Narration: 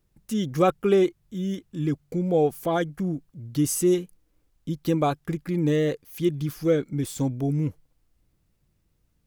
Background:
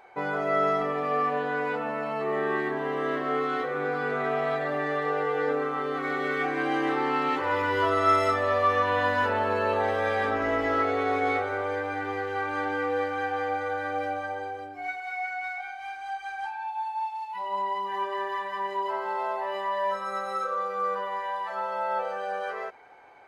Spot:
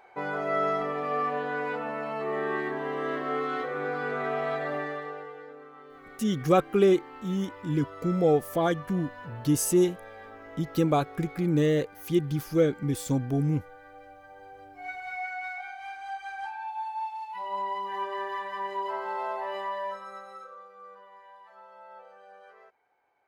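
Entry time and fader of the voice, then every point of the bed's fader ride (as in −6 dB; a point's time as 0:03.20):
5.90 s, −1.0 dB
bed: 0:04.76 −2.5 dB
0:05.49 −19.5 dB
0:14.18 −19.5 dB
0:14.99 −2.5 dB
0:19.61 −2.5 dB
0:20.72 −20 dB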